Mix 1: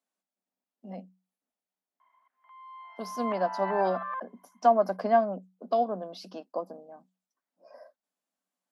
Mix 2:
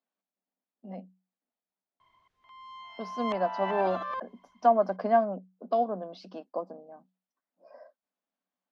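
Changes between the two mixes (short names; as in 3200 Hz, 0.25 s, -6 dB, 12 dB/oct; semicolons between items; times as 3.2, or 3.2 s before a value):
background: remove Chebyshev band-pass 730–1800 Hz, order 2; master: add air absorption 160 m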